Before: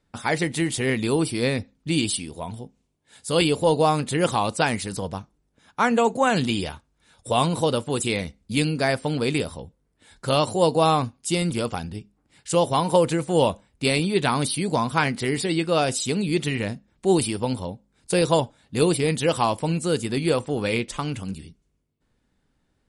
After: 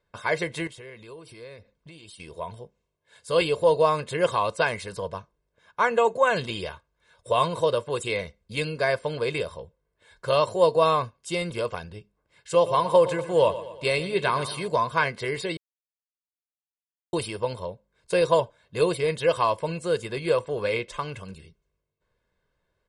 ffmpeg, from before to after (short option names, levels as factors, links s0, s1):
-filter_complex "[0:a]asettb=1/sr,asplit=3[s0][s1][s2];[s0]atrim=end=0.674[s3];[s1]atrim=start=0.67:end=2.2,asetpts=PTS-STARTPTS,afade=t=in:d=0.004:c=qsin,afade=t=out:st=1.526:d=0.004:c=qsin,acompressor=threshold=0.0178:ratio=12:attack=3.2:release=140:knee=1:detection=peak[s4];[s2]atrim=start=2.196[s5];[s3][s4]acrossfade=d=0.004:c1=hsin:c2=qsin[s6];[s6][s5]acrossfade=d=0.004:c1=qsin:c2=hsin,asettb=1/sr,asplit=3[s7][s8][s9];[s7]atrim=end=12.544[s10];[s8]atrim=start=12.54:end=14.68,asetpts=PTS-STARTPTS,afade=t=in:d=0.004:c=qsin,afade=t=out:st=2.136:d=0.004:c=qsin,aecho=1:1:119|238|357|476|595:0.2|0.102|0.0519|0.0265|0.0135,atrim=end_sample=94374[s11];[s9]atrim=start=14.676[s12];[s10][s11]acrossfade=d=0.004:c1=hsin:c2=qsin[s13];[s13][s12]acrossfade=d=0.004:c1=qsin:c2=hsin,asplit=3[s14][s15][s16];[s14]atrim=end=15.57,asetpts=PTS-STARTPTS,afade=t=out:st=15.566:d=0.004:c=hsin[s17];[s15]atrim=start=15.57:end=17.13,asetpts=PTS-STARTPTS,volume=0[s18];[s16]atrim=start=17.13,asetpts=PTS-STARTPTS,afade=t=in:d=0.004:c=hsin[s19];[s17][s18][s19]concat=n=3:v=0:a=1,lowpass=f=2000:p=1,lowshelf=f=320:g=-11,aecho=1:1:1.9:0.74"